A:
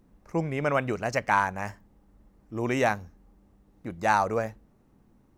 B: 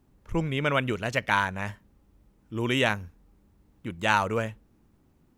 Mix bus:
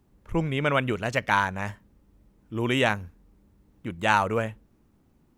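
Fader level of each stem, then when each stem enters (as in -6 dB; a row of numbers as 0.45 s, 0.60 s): -10.5 dB, -0.5 dB; 0.00 s, 0.00 s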